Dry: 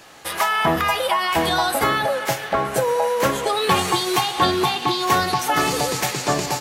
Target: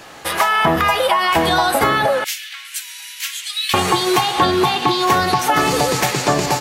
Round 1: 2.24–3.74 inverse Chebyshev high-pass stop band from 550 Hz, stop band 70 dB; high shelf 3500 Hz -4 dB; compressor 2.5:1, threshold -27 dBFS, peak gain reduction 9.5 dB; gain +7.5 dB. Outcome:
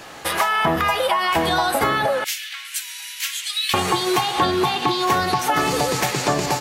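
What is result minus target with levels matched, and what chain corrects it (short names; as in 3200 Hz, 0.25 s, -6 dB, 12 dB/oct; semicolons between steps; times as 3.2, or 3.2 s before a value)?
compressor: peak gain reduction +4 dB
2.24–3.74 inverse Chebyshev high-pass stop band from 550 Hz, stop band 70 dB; high shelf 3500 Hz -4 dB; compressor 2.5:1, threshold -20.5 dBFS, peak gain reduction 5.5 dB; gain +7.5 dB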